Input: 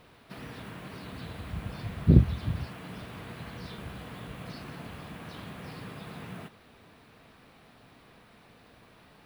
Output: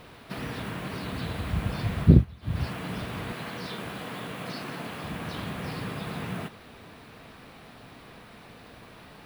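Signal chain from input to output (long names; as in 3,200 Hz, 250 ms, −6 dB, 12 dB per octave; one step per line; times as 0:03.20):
0:02.01–0:02.66: duck −20.5 dB, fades 0.25 s
0:03.32–0:05.04: Bessel high-pass filter 210 Hz, order 2
level +8 dB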